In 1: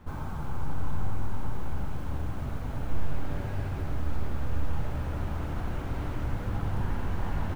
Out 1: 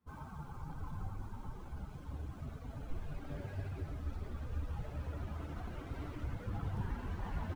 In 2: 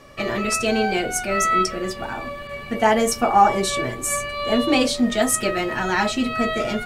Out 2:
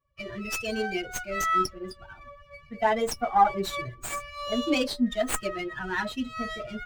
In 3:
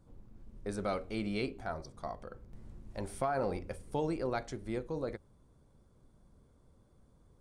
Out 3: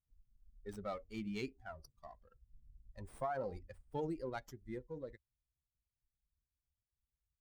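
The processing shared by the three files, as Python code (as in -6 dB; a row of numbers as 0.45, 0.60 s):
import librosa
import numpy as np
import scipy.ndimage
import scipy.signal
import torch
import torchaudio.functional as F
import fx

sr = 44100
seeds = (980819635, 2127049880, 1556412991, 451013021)

y = fx.bin_expand(x, sr, power=2.0)
y = fx.running_max(y, sr, window=3)
y = F.gain(torch.from_numpy(y), -3.5).numpy()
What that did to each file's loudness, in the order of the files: -9.0, -7.5, -7.0 LU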